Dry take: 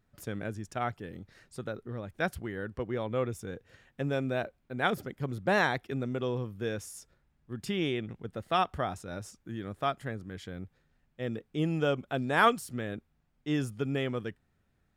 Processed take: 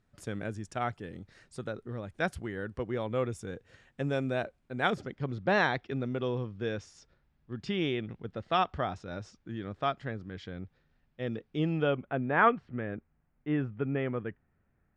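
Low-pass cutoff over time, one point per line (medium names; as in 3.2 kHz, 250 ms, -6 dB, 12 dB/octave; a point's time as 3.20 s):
low-pass 24 dB/octave
4.74 s 9.9 kHz
5.21 s 5.4 kHz
11.57 s 5.4 kHz
12.14 s 2.3 kHz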